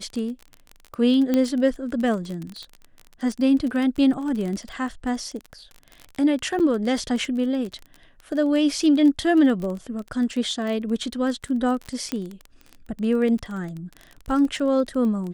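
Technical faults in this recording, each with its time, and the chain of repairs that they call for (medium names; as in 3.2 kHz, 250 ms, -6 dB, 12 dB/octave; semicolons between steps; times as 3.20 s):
crackle 25 per s -28 dBFS
1.34 s: pop -10 dBFS
6.59–6.60 s: dropout 8.2 ms
12.12 s: pop -12 dBFS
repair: de-click; interpolate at 6.59 s, 8.2 ms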